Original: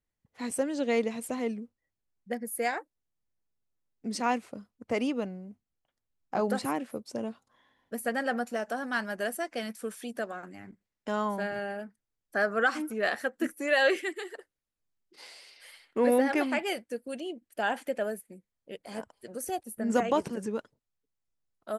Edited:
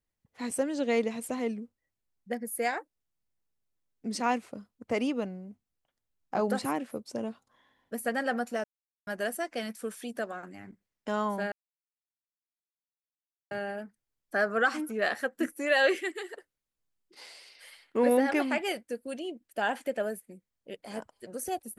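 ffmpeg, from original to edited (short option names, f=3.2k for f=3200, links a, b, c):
-filter_complex "[0:a]asplit=4[a][b][c][d];[a]atrim=end=8.64,asetpts=PTS-STARTPTS,afade=t=out:st=8.636:d=0.004:c=hsin[e];[b]atrim=start=8.64:end=9.07,asetpts=PTS-STARTPTS,volume=0[f];[c]atrim=start=9.07:end=11.52,asetpts=PTS-STARTPTS,afade=t=in:d=0.004:c=hsin,afade=t=out:st=2.446:d=0.004:c=hsin,apad=pad_dur=1.99[g];[d]atrim=start=11.52,asetpts=PTS-STARTPTS,afade=t=in:d=0.004:c=hsin[h];[e][f][g][h]concat=n=4:v=0:a=1"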